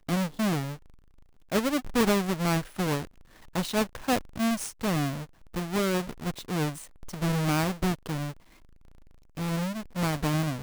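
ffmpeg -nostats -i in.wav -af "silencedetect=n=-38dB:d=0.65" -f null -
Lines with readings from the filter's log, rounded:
silence_start: 0.75
silence_end: 1.52 | silence_duration: 0.77
silence_start: 8.32
silence_end: 9.37 | silence_duration: 1.06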